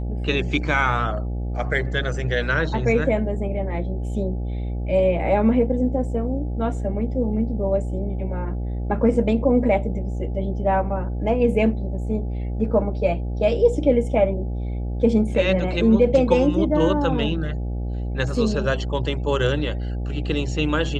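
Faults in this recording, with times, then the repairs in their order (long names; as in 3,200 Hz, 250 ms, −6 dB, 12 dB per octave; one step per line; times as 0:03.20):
mains buzz 60 Hz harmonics 14 −26 dBFS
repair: hum removal 60 Hz, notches 14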